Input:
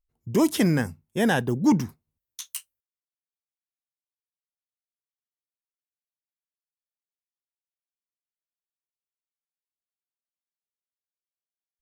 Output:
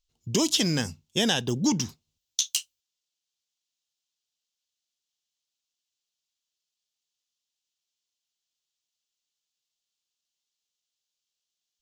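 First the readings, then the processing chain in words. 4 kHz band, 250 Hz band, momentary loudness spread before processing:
+10.5 dB, -5.0 dB, 15 LU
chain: high-order bell 4.5 kHz +16 dB; compression 4:1, threshold -21 dBFS, peak gain reduction 7.5 dB

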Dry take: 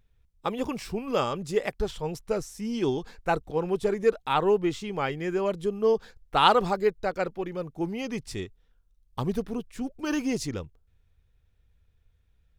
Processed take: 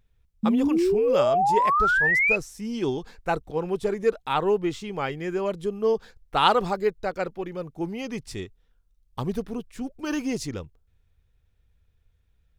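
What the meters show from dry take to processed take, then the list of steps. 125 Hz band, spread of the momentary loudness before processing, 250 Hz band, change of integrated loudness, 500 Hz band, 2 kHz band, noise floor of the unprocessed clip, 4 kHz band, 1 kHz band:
0.0 dB, 11 LU, +3.0 dB, +3.5 dB, +1.5 dB, +10.5 dB, -67 dBFS, 0.0 dB, +3.5 dB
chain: painted sound rise, 0.43–2.36 s, 210–2600 Hz -21 dBFS

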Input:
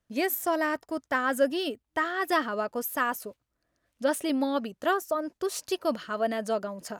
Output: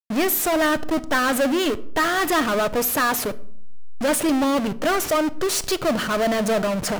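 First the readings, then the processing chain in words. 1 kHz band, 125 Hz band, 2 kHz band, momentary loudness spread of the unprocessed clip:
+6.5 dB, no reading, +7.5 dB, 5 LU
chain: hysteresis with a dead band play -42 dBFS; power-law waveshaper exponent 0.35; simulated room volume 990 m³, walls furnished, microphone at 0.5 m

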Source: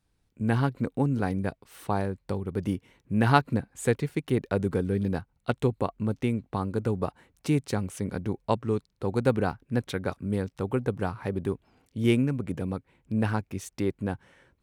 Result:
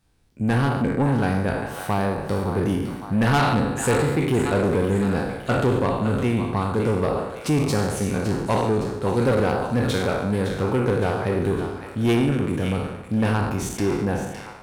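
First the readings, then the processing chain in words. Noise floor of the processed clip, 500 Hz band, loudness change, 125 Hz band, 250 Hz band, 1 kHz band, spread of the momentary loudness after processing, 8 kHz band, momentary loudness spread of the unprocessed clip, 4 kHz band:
-38 dBFS, +7.0 dB, +6.5 dB, +5.5 dB, +6.0 dB, +6.5 dB, 5 LU, +10.0 dB, 8 LU, +8.5 dB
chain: spectral sustain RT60 0.87 s; two-band feedback delay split 670 Hz, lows 85 ms, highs 561 ms, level -10.5 dB; saturation -21 dBFS, distortion -11 dB; trim +6.5 dB

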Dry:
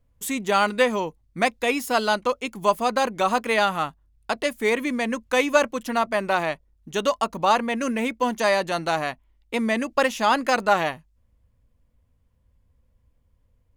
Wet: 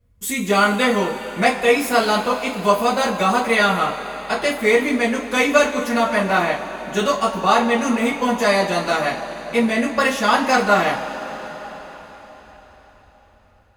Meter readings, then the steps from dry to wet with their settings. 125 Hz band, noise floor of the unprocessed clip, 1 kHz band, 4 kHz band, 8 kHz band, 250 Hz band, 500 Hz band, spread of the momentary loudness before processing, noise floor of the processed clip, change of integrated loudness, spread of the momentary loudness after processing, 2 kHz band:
+7.5 dB, -65 dBFS, +4.0 dB, +5.0 dB, +5.5 dB, +6.5 dB, +4.5 dB, 9 LU, -52 dBFS, +5.0 dB, 10 LU, +5.5 dB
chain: two-slope reverb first 0.23 s, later 4.9 s, from -22 dB, DRR -9 dB; trim -4 dB

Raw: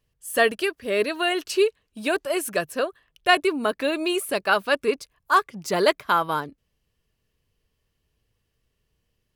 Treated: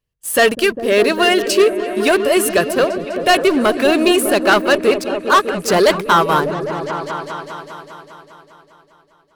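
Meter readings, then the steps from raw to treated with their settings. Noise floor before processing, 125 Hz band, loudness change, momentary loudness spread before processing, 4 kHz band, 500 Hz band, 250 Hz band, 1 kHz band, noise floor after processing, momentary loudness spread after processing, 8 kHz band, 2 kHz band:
-75 dBFS, +13.0 dB, +8.5 dB, 8 LU, +8.5 dB, +10.0 dB, +12.0 dB, +8.0 dB, -55 dBFS, 11 LU, +11.0 dB, +7.5 dB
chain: waveshaping leveller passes 3; delay with an opening low-pass 201 ms, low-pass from 200 Hz, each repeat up 1 oct, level -3 dB

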